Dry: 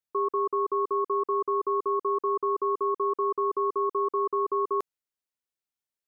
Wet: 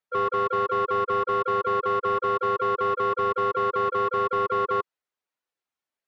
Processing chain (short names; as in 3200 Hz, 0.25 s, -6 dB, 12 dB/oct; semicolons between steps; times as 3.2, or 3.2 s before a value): spectral contrast raised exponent 1.6; harmoniser +4 st -5 dB; overdrive pedal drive 15 dB, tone 1300 Hz, clips at -15.5 dBFS